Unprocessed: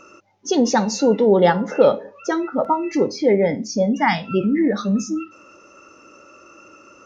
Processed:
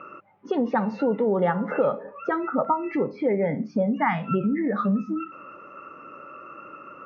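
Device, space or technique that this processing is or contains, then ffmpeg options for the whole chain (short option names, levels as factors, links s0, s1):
bass amplifier: -af "acompressor=threshold=0.0562:ratio=3,highpass=83,equalizer=f=99:t=q:w=4:g=-6,equalizer=f=150:t=q:w=4:g=7,equalizer=f=330:t=q:w=4:g=-4,equalizer=f=1200:t=q:w=4:g=7,lowpass=f=2400:w=0.5412,lowpass=f=2400:w=1.3066,volume=1.33"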